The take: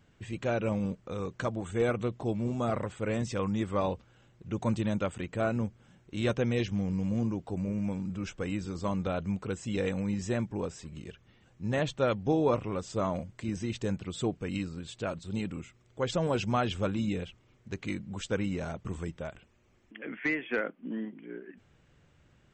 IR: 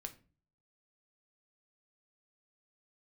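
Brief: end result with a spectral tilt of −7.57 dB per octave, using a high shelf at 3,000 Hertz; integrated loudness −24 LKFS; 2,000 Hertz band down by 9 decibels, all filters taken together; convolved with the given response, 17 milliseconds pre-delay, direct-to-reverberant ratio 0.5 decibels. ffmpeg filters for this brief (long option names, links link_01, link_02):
-filter_complex "[0:a]equalizer=frequency=2000:width_type=o:gain=-9,highshelf=frequency=3000:gain=-8.5,asplit=2[link_01][link_02];[1:a]atrim=start_sample=2205,adelay=17[link_03];[link_02][link_03]afir=irnorm=-1:irlink=0,volume=3.5dB[link_04];[link_01][link_04]amix=inputs=2:normalize=0,volume=6dB"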